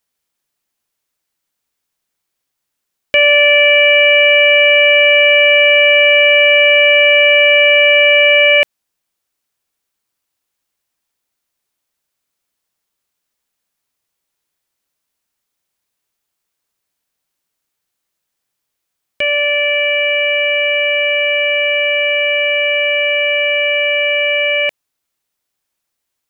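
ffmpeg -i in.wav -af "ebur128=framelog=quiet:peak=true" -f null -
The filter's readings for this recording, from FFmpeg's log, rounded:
Integrated loudness:
  I:          -9.1 LUFS
  Threshold: -19.1 LUFS
Loudness range:
  LRA:        10.3 LU
  Threshold: -30.3 LUFS
  LRA low:   -17.1 LUFS
  LRA high:   -6.9 LUFS
True peak:
  Peak:       -2.1 dBFS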